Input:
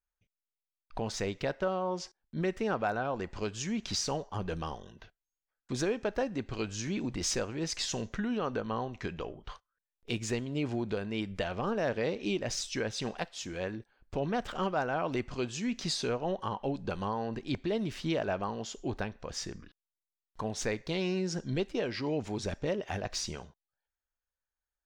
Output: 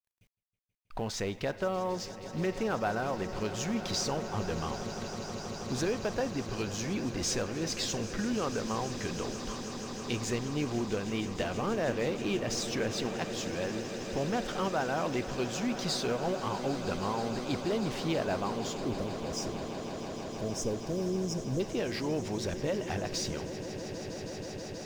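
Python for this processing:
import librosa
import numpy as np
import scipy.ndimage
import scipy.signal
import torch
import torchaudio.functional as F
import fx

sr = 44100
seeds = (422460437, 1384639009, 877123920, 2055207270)

p1 = fx.law_mismatch(x, sr, coded='mu')
p2 = fx.spec_erase(p1, sr, start_s=18.83, length_s=2.77, low_hz=680.0, high_hz=4800.0)
p3 = p2 + fx.echo_swell(p2, sr, ms=160, loudest=8, wet_db=-16.0, dry=0)
y = p3 * 10.0 ** (-1.5 / 20.0)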